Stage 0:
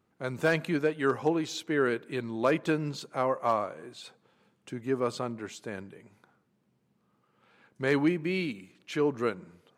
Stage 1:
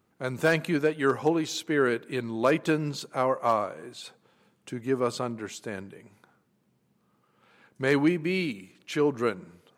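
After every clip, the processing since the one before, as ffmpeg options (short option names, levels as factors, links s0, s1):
-af "highshelf=f=7400:g=5.5,volume=1.33"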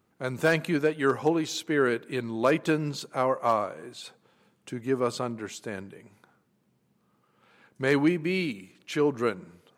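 -af anull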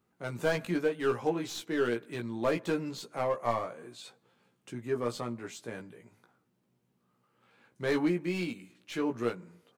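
-filter_complex "[0:a]acrossover=split=840[s0][s1];[s1]aeval=exprs='clip(val(0),-1,0.0188)':c=same[s2];[s0][s2]amix=inputs=2:normalize=0,asplit=2[s3][s4];[s4]adelay=17,volume=0.631[s5];[s3][s5]amix=inputs=2:normalize=0,volume=0.473"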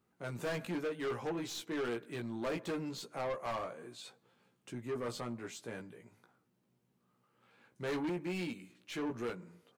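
-af "asoftclip=type=tanh:threshold=0.0299,volume=0.794"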